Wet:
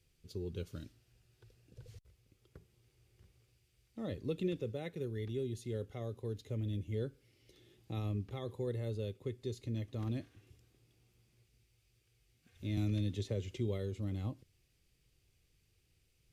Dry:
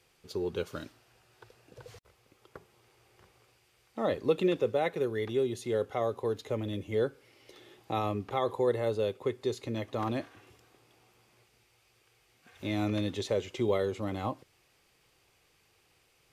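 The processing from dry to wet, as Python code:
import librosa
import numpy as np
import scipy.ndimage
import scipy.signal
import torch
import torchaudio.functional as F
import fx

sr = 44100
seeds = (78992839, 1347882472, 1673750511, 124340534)

y = fx.tone_stack(x, sr, knobs='10-0-1')
y = fx.band_squash(y, sr, depth_pct=70, at=(12.77, 13.58))
y = y * 10.0 ** (12.5 / 20.0)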